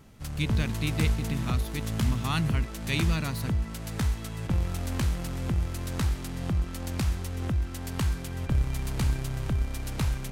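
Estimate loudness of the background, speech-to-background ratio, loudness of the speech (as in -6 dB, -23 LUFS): -31.0 LUFS, -1.5 dB, -32.5 LUFS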